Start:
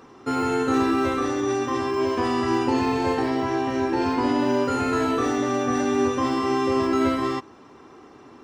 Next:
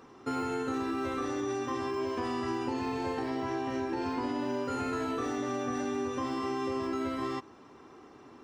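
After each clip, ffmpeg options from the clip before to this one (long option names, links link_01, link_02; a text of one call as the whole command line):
ffmpeg -i in.wav -af "acompressor=threshold=-24dB:ratio=6,volume=-5.5dB" out.wav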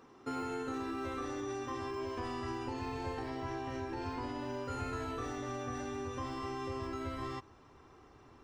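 ffmpeg -i in.wav -af "asubboost=boost=7.5:cutoff=85,volume=-5dB" out.wav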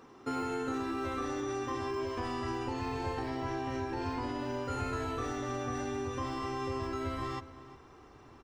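ffmpeg -i in.wav -filter_complex "[0:a]asplit=2[link_01][link_02];[link_02]adelay=355.7,volume=-15dB,highshelf=frequency=4000:gain=-8[link_03];[link_01][link_03]amix=inputs=2:normalize=0,volume=3.5dB" out.wav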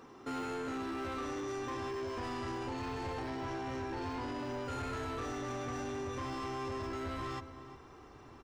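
ffmpeg -i in.wav -af "asoftclip=type=tanh:threshold=-36dB,volume=1dB" out.wav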